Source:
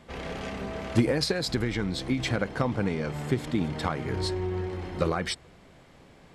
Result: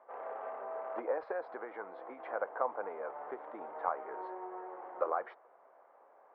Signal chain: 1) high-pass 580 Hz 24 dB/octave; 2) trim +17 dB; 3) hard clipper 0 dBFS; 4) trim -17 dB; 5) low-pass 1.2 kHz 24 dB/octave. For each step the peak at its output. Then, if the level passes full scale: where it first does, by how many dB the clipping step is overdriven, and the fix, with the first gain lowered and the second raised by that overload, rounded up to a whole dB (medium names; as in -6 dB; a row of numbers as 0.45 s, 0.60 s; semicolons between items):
-14.0 dBFS, +3.0 dBFS, 0.0 dBFS, -17.0 dBFS, -17.0 dBFS; step 2, 3.0 dB; step 2 +14 dB, step 4 -14 dB